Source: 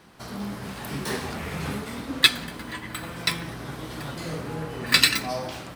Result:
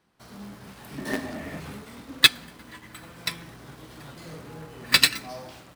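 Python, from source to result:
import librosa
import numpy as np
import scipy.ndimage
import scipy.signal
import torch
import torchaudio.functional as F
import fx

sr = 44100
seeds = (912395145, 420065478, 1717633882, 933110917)

p1 = fx.small_body(x, sr, hz=(280.0, 610.0, 1800.0), ring_ms=40, db=14, at=(0.98, 1.6))
p2 = fx.quant_companded(p1, sr, bits=2)
p3 = p1 + (p2 * librosa.db_to_amplitude(-10.0))
p4 = fx.upward_expand(p3, sr, threshold_db=-36.0, expansion=1.5)
y = p4 * librosa.db_to_amplitude(-2.5)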